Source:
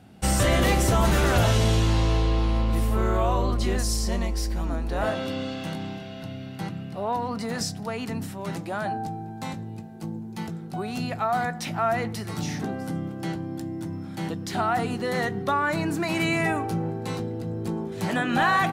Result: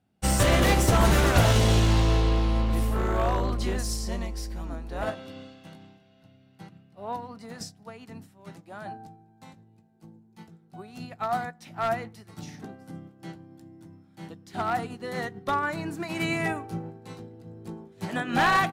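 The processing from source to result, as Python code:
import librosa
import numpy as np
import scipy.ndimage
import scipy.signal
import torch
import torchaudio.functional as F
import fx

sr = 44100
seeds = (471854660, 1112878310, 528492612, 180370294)

y = np.minimum(x, 2.0 * 10.0 ** (-17.5 / 20.0) - x)
y = fx.upward_expand(y, sr, threshold_db=-36.0, expansion=2.5)
y = F.gain(torch.from_numpy(y), 4.0).numpy()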